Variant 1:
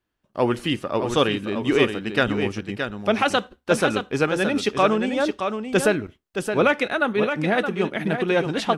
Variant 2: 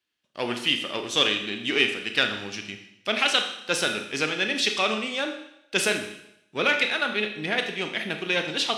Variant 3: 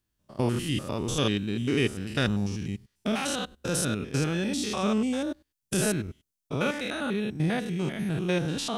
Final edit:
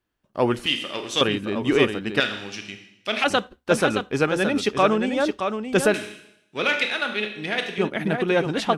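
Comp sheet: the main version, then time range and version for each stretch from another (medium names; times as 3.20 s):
1
0.66–1.21 s: from 2
2.20–3.24 s: from 2
5.94–7.78 s: from 2
not used: 3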